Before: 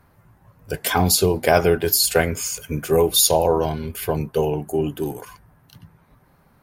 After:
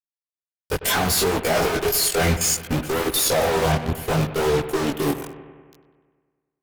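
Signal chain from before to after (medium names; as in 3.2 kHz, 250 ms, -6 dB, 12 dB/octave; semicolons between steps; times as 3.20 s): fuzz box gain 40 dB, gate -33 dBFS; level held to a coarse grid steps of 17 dB; chorus voices 2, 0.66 Hz, delay 20 ms, depth 4.9 ms; bucket-brigade echo 98 ms, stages 2048, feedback 66%, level -13 dB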